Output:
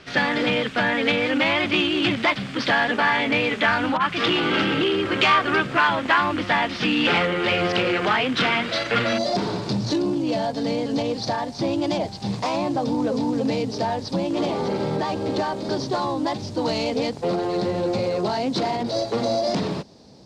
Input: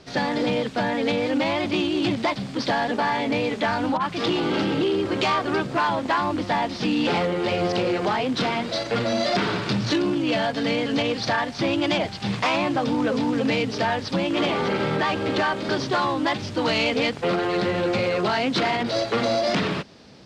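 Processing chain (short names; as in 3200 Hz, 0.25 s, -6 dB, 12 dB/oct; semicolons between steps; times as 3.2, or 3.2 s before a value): band shelf 2000 Hz +8 dB, from 9.17 s -10 dB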